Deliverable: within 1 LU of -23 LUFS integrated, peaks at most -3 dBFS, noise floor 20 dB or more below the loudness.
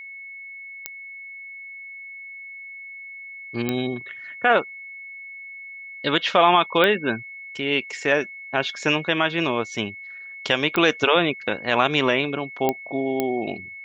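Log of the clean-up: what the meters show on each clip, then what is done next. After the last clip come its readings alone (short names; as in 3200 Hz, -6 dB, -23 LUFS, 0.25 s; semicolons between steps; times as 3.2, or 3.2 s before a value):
clicks 6; steady tone 2200 Hz; tone level -36 dBFS; loudness -22.0 LUFS; peak -4.0 dBFS; loudness target -23.0 LUFS
-> de-click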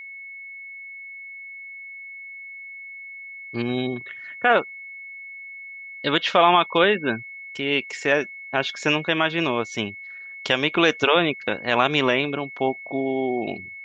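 clicks 0; steady tone 2200 Hz; tone level -36 dBFS
-> notch 2200 Hz, Q 30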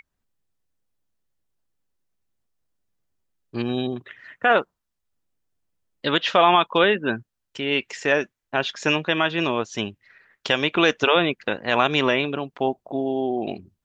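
steady tone none; loudness -22.0 LUFS; peak -4.0 dBFS; loudness target -23.0 LUFS
-> gain -1 dB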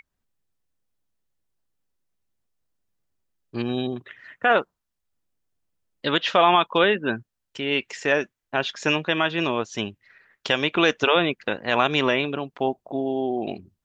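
loudness -23.0 LUFS; peak -5.0 dBFS; noise floor -81 dBFS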